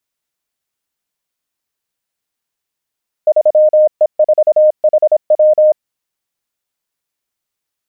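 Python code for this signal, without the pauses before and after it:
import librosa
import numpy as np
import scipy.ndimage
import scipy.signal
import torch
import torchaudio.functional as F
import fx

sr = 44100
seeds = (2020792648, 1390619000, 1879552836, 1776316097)

y = fx.morse(sr, text='3E4HW', wpm=26, hz=614.0, level_db=-5.0)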